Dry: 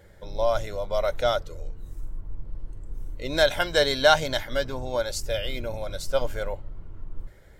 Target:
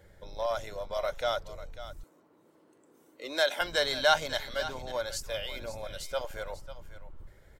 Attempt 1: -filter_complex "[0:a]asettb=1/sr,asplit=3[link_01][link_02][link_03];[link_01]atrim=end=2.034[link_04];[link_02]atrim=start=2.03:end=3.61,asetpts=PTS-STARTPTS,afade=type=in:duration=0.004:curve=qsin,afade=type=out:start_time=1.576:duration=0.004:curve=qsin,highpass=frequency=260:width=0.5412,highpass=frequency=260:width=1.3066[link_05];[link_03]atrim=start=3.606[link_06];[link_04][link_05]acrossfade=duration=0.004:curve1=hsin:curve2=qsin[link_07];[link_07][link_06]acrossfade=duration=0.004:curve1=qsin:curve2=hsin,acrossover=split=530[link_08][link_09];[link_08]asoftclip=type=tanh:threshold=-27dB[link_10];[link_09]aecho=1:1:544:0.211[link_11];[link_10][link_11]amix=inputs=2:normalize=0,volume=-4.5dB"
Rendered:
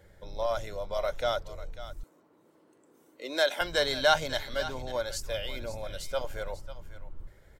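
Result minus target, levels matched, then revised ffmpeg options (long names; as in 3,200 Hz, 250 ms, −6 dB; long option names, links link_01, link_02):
soft clipping: distortion −6 dB
-filter_complex "[0:a]asettb=1/sr,asplit=3[link_01][link_02][link_03];[link_01]atrim=end=2.034[link_04];[link_02]atrim=start=2.03:end=3.61,asetpts=PTS-STARTPTS,afade=type=in:duration=0.004:curve=qsin,afade=type=out:start_time=1.576:duration=0.004:curve=qsin,highpass=frequency=260:width=0.5412,highpass=frequency=260:width=1.3066[link_05];[link_03]atrim=start=3.606[link_06];[link_04][link_05]acrossfade=duration=0.004:curve1=hsin:curve2=qsin[link_07];[link_07][link_06]acrossfade=duration=0.004:curve1=qsin:curve2=hsin,acrossover=split=530[link_08][link_09];[link_08]asoftclip=type=tanh:threshold=-35.5dB[link_10];[link_09]aecho=1:1:544:0.211[link_11];[link_10][link_11]amix=inputs=2:normalize=0,volume=-4.5dB"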